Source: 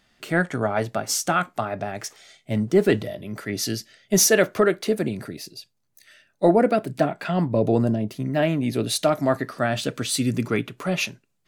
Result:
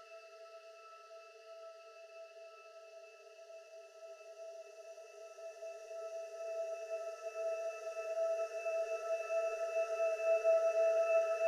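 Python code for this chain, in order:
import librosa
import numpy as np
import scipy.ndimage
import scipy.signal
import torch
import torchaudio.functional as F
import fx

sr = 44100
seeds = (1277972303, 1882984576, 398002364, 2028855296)

p1 = fx.brickwall_highpass(x, sr, low_hz=420.0)
p2 = fx.octave_resonator(p1, sr, note='E', decay_s=0.49)
p3 = 10.0 ** (-27.0 / 20.0) * np.tanh(p2 / 10.0 ** (-27.0 / 20.0))
p4 = p2 + F.gain(torch.from_numpy(p3), -4.0).numpy()
p5 = fx.paulstretch(p4, sr, seeds[0], factor=23.0, window_s=1.0, from_s=3.72)
y = F.gain(torch.from_numpy(p5), 4.5).numpy()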